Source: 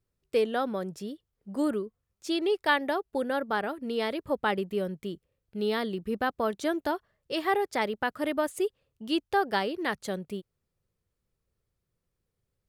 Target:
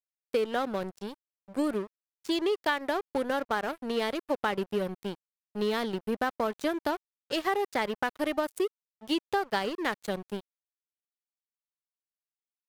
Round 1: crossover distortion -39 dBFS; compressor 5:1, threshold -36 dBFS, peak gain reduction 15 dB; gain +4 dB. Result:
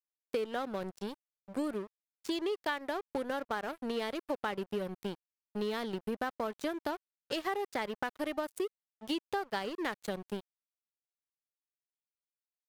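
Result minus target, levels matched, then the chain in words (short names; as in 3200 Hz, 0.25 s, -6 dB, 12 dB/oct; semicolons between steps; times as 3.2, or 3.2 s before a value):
compressor: peak gain reduction +6.5 dB
crossover distortion -39 dBFS; compressor 5:1, threshold -28 dBFS, peak gain reduction 8.5 dB; gain +4 dB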